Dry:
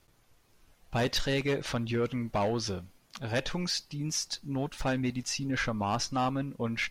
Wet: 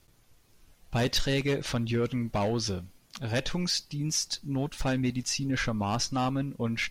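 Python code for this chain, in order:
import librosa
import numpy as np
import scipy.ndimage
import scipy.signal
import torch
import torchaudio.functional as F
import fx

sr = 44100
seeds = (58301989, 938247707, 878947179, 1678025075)

y = fx.peak_eq(x, sr, hz=990.0, db=-5.0, octaves=3.0)
y = F.gain(torch.from_numpy(y), 4.0).numpy()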